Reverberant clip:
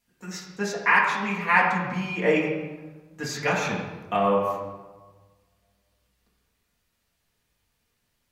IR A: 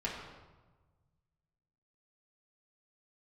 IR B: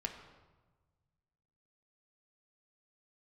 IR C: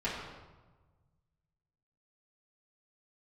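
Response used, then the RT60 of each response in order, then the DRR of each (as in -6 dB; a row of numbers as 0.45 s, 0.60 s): A; 1.3 s, 1.3 s, 1.3 s; -6.0 dB, 2.5 dB, -10.0 dB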